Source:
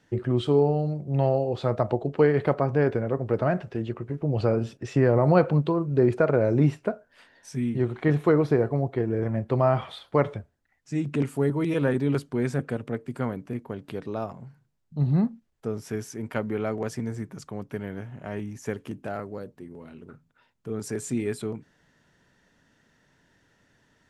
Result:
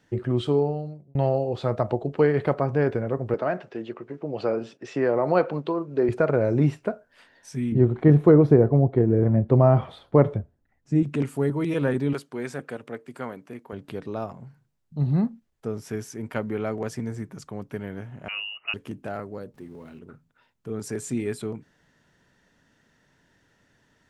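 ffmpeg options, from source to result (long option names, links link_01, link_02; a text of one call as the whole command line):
ffmpeg -i in.wav -filter_complex "[0:a]asettb=1/sr,asplit=3[link_01][link_02][link_03];[link_01]atrim=end=3.344[link_04];[link_02]atrim=start=3.34:end=6.09,asetpts=PTS-STARTPTS,afade=type=in:duration=0.004:curve=qsin,afade=type=out:start_time=2.746:duration=0.004:curve=qsin,highpass=280,lowpass=6300[link_05];[link_03]atrim=start=6.086[link_06];[link_04][link_05]acrossfade=duration=0.004:curve1=hsin:curve2=qsin[link_07];[link_07][link_06]acrossfade=duration=0.004:curve1=qsin:curve2=hsin,asettb=1/sr,asplit=3[link_08][link_09][link_10];[link_08]atrim=end=7.724[link_11];[link_09]atrim=start=7.72:end=11.03,asetpts=PTS-STARTPTS,afade=type=in:duration=0.004:curve=qsin,afade=type=out:start_time=3.306:duration=0.004:curve=qsin,tiltshelf=frequency=970:gain=8[link_12];[link_10]atrim=start=11.026[link_13];[link_11][link_12]acrossfade=duration=0.004:curve1=hsin:curve2=qsin[link_14];[link_14][link_13]acrossfade=duration=0.004:curve1=qsin:curve2=hsin,asettb=1/sr,asplit=3[link_15][link_16][link_17];[link_15]atrim=end=12.134[link_18];[link_16]atrim=start=12.13:end=13.73,asetpts=PTS-STARTPTS,afade=type=in:duration=0.004:curve=qsin,afade=type=out:start_time=1.596:duration=0.004:curve=qsin,highpass=frequency=500:poles=1[link_19];[link_17]atrim=start=13.726[link_20];[link_18][link_19]acrossfade=duration=0.004:curve1=hsin:curve2=qsin[link_21];[link_21][link_20]acrossfade=duration=0.004:curve1=qsin:curve2=hsin,asettb=1/sr,asplit=3[link_22][link_23][link_24];[link_22]atrim=end=18.284[link_25];[link_23]atrim=start=18.28:end=18.74,asetpts=PTS-STARTPTS,afade=type=in:duration=0.004:curve=qsin,afade=type=out:start_time=0.456:duration=0.004:curve=qsin,lowpass=frequency=2600:width_type=q:width=0.5098,lowpass=frequency=2600:width_type=q:width=0.6013,lowpass=frequency=2600:width_type=q:width=0.9,lowpass=frequency=2600:width_type=q:width=2.563,afreqshift=-3000[link_26];[link_24]atrim=start=18.736[link_27];[link_25][link_26]acrossfade=duration=0.004:curve1=hsin:curve2=qsin[link_28];[link_28][link_27]acrossfade=duration=0.004:curve1=qsin:curve2=hsin,asettb=1/sr,asplit=3[link_29][link_30][link_31];[link_29]atrim=end=19.544[link_32];[link_30]atrim=start=19.54:end=19.99,asetpts=PTS-STARTPTS,afade=type=in:duration=0.004:curve=qsin,afade=type=out:start_time=0.446:duration=0.004:curve=qsin,aeval=exprs='val(0)+0.5*0.00141*sgn(val(0))':channel_layout=same[link_33];[link_31]atrim=start=19.986[link_34];[link_32][link_33]acrossfade=duration=0.004:curve1=hsin:curve2=qsin[link_35];[link_35][link_34]acrossfade=duration=0.004:curve1=qsin:curve2=hsin,asplit=2[link_36][link_37];[link_36]atrim=end=1.15,asetpts=PTS-STARTPTS,afade=type=out:start_time=0.47:duration=0.68[link_38];[link_37]atrim=start=1.15,asetpts=PTS-STARTPTS,afade=type=in:duration=0.004:curve=hsin[link_39];[link_38][link_39]concat=n=2:v=0:a=1" out.wav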